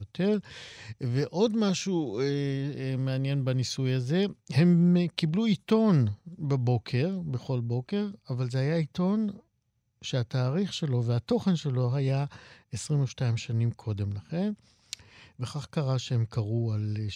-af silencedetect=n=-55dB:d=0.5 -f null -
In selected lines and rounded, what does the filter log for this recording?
silence_start: 9.41
silence_end: 10.02 | silence_duration: 0.61